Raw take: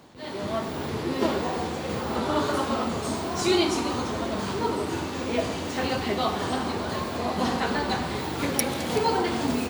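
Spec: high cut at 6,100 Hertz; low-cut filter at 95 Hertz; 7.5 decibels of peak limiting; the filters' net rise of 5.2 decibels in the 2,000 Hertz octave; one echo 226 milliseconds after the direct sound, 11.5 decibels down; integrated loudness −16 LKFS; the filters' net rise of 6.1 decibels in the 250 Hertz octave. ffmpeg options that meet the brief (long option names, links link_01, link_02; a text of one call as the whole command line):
ffmpeg -i in.wav -af "highpass=95,lowpass=6100,equalizer=frequency=250:width_type=o:gain=7.5,equalizer=frequency=2000:width_type=o:gain=6.5,alimiter=limit=-15dB:level=0:latency=1,aecho=1:1:226:0.266,volume=9dB" out.wav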